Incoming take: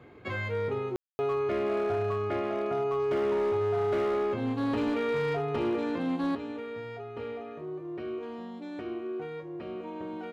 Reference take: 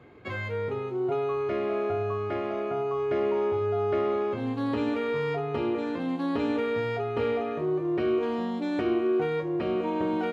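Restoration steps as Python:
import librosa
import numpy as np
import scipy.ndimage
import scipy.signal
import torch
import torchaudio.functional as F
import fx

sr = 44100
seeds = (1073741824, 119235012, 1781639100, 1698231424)

y = fx.fix_declip(x, sr, threshold_db=-24.0)
y = fx.fix_ambience(y, sr, seeds[0], print_start_s=0.0, print_end_s=0.5, start_s=0.96, end_s=1.19)
y = fx.gain(y, sr, db=fx.steps((0.0, 0.0), (6.35, 10.5)))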